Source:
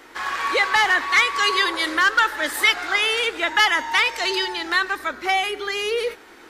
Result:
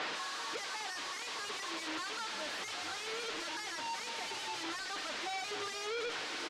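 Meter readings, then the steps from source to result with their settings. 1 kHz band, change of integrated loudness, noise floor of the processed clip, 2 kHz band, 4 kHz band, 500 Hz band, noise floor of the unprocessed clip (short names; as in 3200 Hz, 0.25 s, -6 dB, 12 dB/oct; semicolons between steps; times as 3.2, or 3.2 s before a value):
-18.5 dB, -19.0 dB, -42 dBFS, -21.5 dB, -16.0 dB, -16.5 dB, -46 dBFS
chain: recorder AGC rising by 40 dB/s; high shelf 2600 Hz -8.5 dB; comb 6.6 ms, depth 85%; compressor, threshold -18 dBFS, peak gain reduction 6.5 dB; soft clip -23.5 dBFS, distortion -10 dB; overdrive pedal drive 34 dB, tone 2400 Hz, clips at -15.5 dBFS; wavefolder -27.5 dBFS; BPF 270–4500 Hz; frequency-shifting echo 0.475 s, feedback 61%, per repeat -110 Hz, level -16.5 dB; gain -4.5 dB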